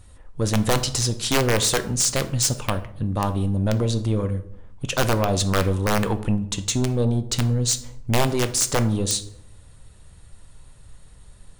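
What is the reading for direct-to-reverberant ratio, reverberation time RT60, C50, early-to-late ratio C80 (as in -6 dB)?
9.0 dB, 0.75 s, 14.0 dB, 18.0 dB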